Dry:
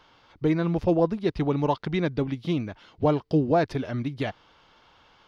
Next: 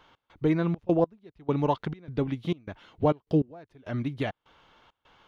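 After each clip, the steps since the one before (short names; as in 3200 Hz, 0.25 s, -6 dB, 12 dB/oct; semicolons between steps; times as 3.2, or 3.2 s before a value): bell 5000 Hz -8.5 dB 0.43 oct; step gate "x.xxx.x...xxx.xx" 101 bpm -24 dB; gain -1 dB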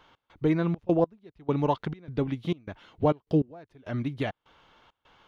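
nothing audible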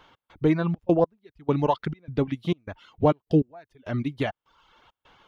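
reverb removal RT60 0.74 s; gain +3.5 dB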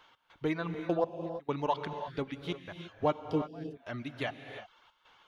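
low shelf 490 Hz -12 dB; non-linear reverb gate 0.37 s rising, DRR 7.5 dB; gain -3 dB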